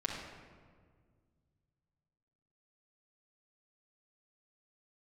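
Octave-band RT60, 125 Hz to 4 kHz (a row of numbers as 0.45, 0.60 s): 3.2, 2.5, 2.0, 1.6, 1.3, 0.95 s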